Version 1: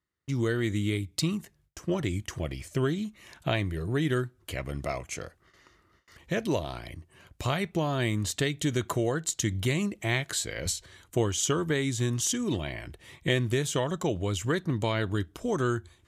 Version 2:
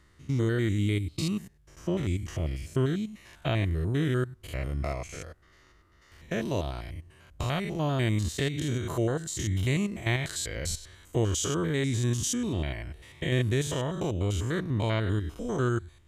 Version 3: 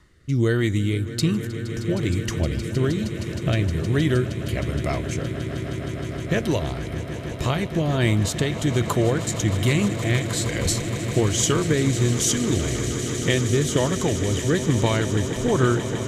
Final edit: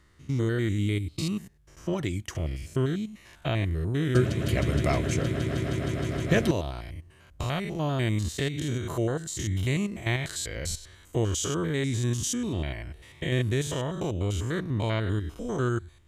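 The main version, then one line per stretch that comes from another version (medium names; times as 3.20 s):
2
1.93–2.35 s: from 1
4.15–6.51 s: from 3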